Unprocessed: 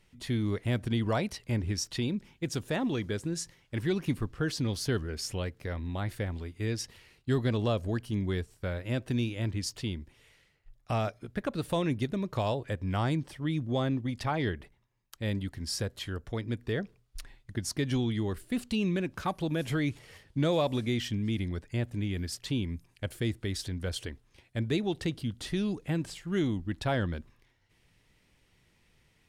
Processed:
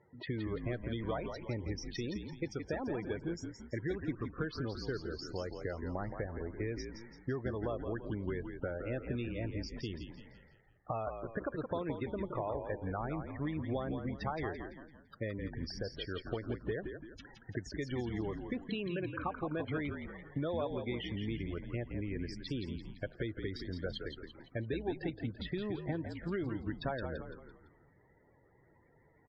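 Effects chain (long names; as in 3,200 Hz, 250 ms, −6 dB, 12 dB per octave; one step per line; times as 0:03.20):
adaptive Wiener filter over 15 samples
high-pass filter 160 Hz 12 dB per octave
parametric band 210 Hz −10 dB 1.1 octaves
downward compressor, threshold −45 dBFS, peak gain reduction 18 dB
spectral peaks only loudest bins 32
high-frequency loss of the air 170 metres
echo with shifted repeats 169 ms, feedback 44%, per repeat −53 Hz, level −6.5 dB
level +10.5 dB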